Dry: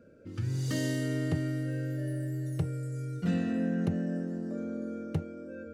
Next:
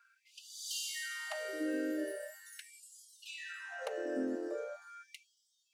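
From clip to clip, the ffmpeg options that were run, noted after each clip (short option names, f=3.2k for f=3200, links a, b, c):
-af "afftfilt=real='re*gte(b*sr/1024,250*pow(3000/250,0.5+0.5*sin(2*PI*0.41*pts/sr)))':imag='im*gte(b*sr/1024,250*pow(3000/250,0.5+0.5*sin(2*PI*0.41*pts/sr)))':win_size=1024:overlap=0.75,volume=3.5dB"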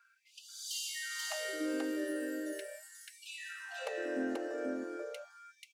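-af "aecho=1:1:485:0.708"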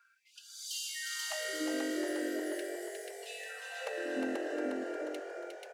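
-filter_complex "[0:a]asplit=8[a][b][c][d][e][f][g][h];[b]adelay=357,afreqshift=45,volume=-5dB[i];[c]adelay=714,afreqshift=90,volume=-10.4dB[j];[d]adelay=1071,afreqshift=135,volume=-15.7dB[k];[e]adelay=1428,afreqshift=180,volume=-21.1dB[l];[f]adelay=1785,afreqshift=225,volume=-26.4dB[m];[g]adelay=2142,afreqshift=270,volume=-31.8dB[n];[h]adelay=2499,afreqshift=315,volume=-37.1dB[o];[a][i][j][k][l][m][n][o]amix=inputs=8:normalize=0"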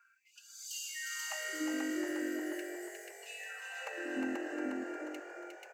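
-af "superequalizer=7b=0.355:8b=0.447:13b=0.282:14b=0.501:16b=0.355"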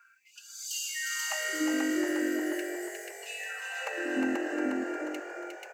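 -af "highpass=75,volume=7dB"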